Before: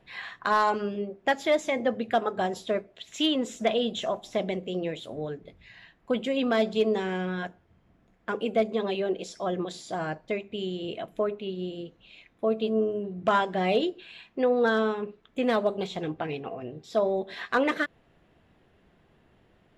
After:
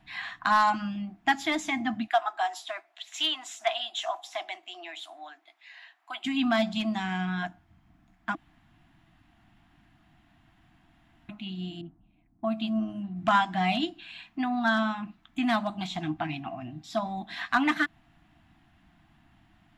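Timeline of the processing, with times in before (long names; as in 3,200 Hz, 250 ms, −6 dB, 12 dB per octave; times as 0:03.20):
0:02.07–0:06.25: elliptic high-pass filter 420 Hz, stop band 60 dB
0:08.35–0:11.29: fill with room tone
0:11.81–0:13.16: low-pass that shuts in the quiet parts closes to 360 Hz, open at −25 dBFS
whole clip: elliptic band-stop filter 320–690 Hz, stop band 40 dB; level +2.5 dB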